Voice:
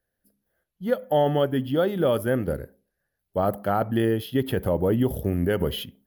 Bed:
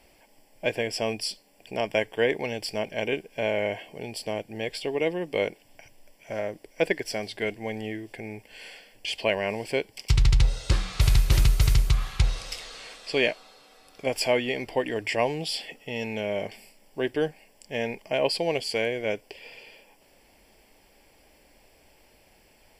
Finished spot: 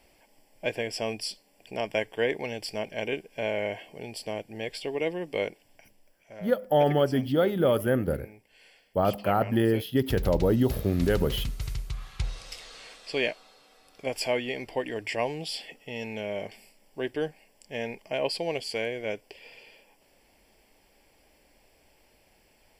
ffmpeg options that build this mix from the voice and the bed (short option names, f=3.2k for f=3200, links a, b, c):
-filter_complex "[0:a]adelay=5600,volume=-1dB[a];[1:a]volume=6dB,afade=t=out:st=5.4:d=0.9:silence=0.316228,afade=t=in:st=11.9:d=0.88:silence=0.354813[b];[a][b]amix=inputs=2:normalize=0"